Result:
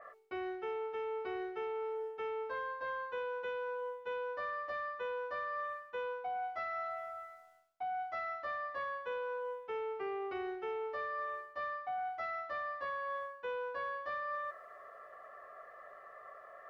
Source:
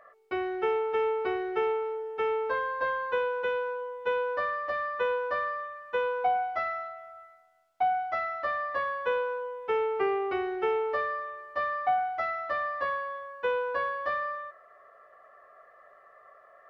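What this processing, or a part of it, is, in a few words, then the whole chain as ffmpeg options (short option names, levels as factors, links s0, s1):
compression on the reversed sound: -af "areverse,acompressor=threshold=0.0112:ratio=12,areverse,adynamicequalizer=threshold=0.00126:dfrequency=4000:dqfactor=0.7:tfrequency=4000:tqfactor=0.7:attack=5:release=100:ratio=0.375:range=2:mode=boostabove:tftype=highshelf,volume=1.33"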